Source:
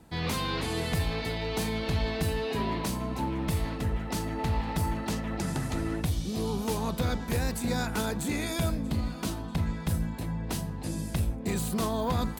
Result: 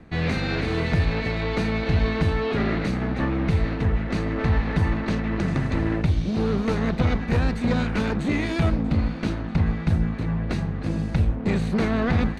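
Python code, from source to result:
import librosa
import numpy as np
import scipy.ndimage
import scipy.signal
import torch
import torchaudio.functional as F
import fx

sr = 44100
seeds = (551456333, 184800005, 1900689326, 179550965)

y = fx.lower_of_two(x, sr, delay_ms=0.48)
y = scipy.signal.sosfilt(scipy.signal.butter(2, 2900.0, 'lowpass', fs=sr, output='sos'), y)
y = y * librosa.db_to_amplitude(8.0)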